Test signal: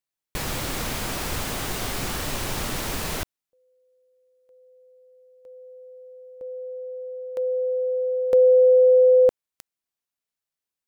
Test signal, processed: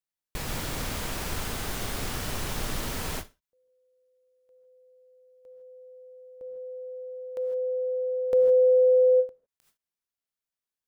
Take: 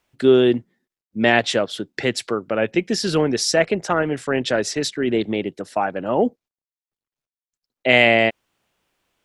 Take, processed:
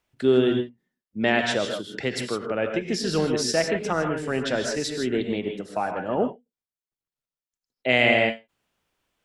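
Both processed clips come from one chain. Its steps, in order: low shelf 100 Hz +4.5 dB; non-linear reverb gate 0.18 s rising, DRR 4 dB; ending taper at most 260 dB/s; gain -6 dB

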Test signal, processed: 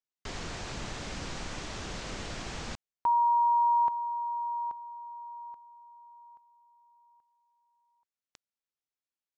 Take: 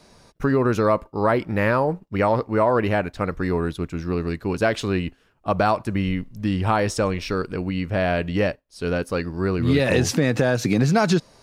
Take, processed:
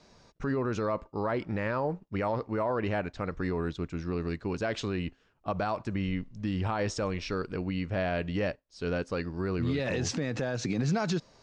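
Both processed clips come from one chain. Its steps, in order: steep low-pass 7400 Hz 36 dB/oct; limiter -14.5 dBFS; gain -6.5 dB

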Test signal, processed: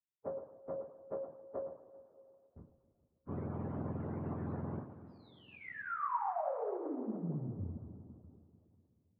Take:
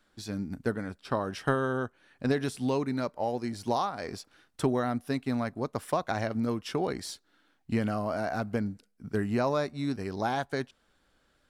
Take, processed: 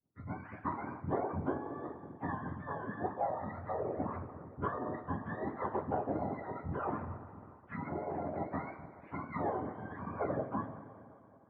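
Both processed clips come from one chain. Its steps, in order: spectrum mirrored in octaves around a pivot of 670 Hz; compressor 6:1, threshold -37 dBFS; gate with hold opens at -56 dBFS; LPF 1200 Hz 24 dB/oct; two-slope reverb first 0.44 s, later 2.7 s, from -14 dB, DRR -5.5 dB; harmonic-percussive split harmonic -17 dB; gain +6.5 dB

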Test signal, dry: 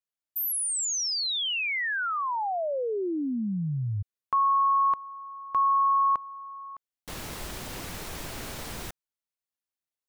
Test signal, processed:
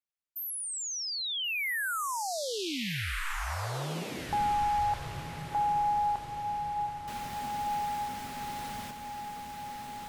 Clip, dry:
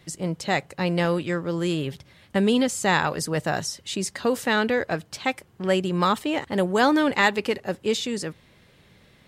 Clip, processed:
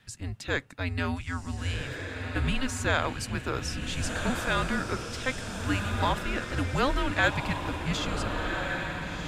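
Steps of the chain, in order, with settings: bell 2300 Hz +5 dB 2 oct; frequency shift -270 Hz; diffused feedback echo 1.46 s, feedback 45%, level -4 dB; gain -8 dB

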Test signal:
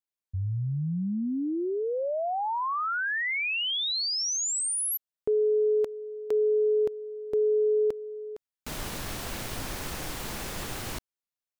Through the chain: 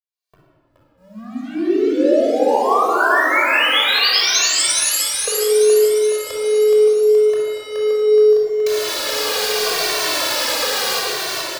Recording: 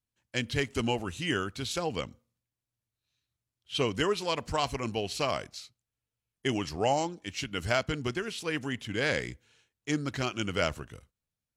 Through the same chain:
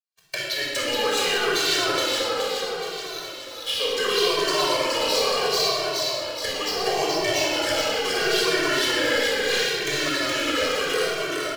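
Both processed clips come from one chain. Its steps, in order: recorder AGC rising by 78 dB/s, up to +26 dB; HPF 420 Hz 24 dB/oct; bell 4500 Hz +8 dB 0.85 oct; compressor 5:1, threshold -35 dBFS; sample leveller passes 5; feedback echo 0.422 s, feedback 58%, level -3 dB; shoebox room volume 3300 m³, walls mixed, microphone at 5.7 m; endless flanger 2.1 ms -0.73 Hz; gain -6.5 dB

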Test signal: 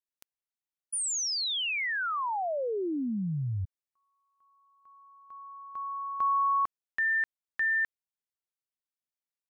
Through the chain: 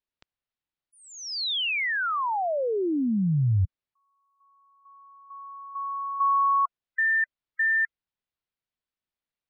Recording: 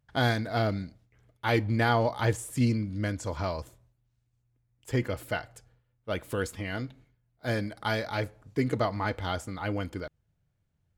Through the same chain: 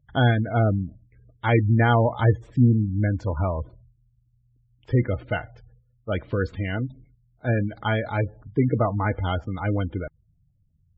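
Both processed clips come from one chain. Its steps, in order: LPF 4400 Hz 24 dB/oct; spectral gate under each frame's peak -20 dB strong; low shelf 150 Hz +8.5 dB; gain +4 dB

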